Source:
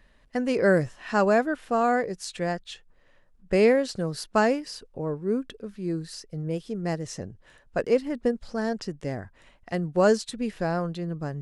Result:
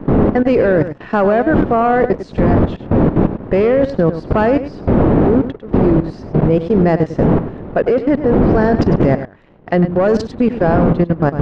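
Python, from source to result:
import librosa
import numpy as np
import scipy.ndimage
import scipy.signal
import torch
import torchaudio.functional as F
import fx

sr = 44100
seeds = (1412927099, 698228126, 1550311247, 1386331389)

p1 = fx.dmg_wind(x, sr, seeds[0], corner_hz=260.0, level_db=-25.0)
p2 = fx.low_shelf(p1, sr, hz=210.0, db=-10.0)
p3 = fx.rider(p2, sr, range_db=5, speed_s=2.0)
p4 = p2 + F.gain(torch.from_numpy(p3), 2.5).numpy()
p5 = fx.leveller(p4, sr, passes=2)
p6 = fx.level_steps(p5, sr, step_db=18)
p7 = fx.spacing_loss(p6, sr, db_at_10k=37)
p8 = p7 + 10.0 ** (-11.5 / 20.0) * np.pad(p7, (int(101 * sr / 1000.0), 0))[:len(p7)]
y = F.gain(torch.from_numpy(p8), 8.0).numpy()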